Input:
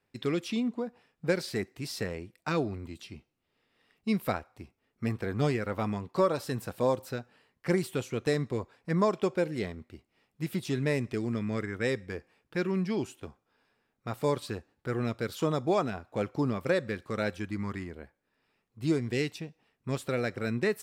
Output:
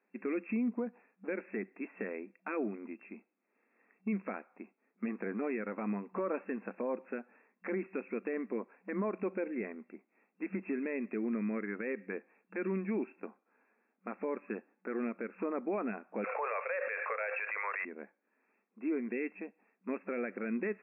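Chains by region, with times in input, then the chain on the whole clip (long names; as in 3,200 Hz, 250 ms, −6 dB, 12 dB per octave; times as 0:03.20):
0:16.24–0:17.85: Butterworth high-pass 480 Hz 72 dB per octave + high-shelf EQ 2,600 Hz +11.5 dB + envelope flattener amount 70%
whole clip: brick-wall band-pass 190–2,700 Hz; dynamic equaliser 820 Hz, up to −5 dB, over −42 dBFS, Q 0.9; brickwall limiter −26.5 dBFS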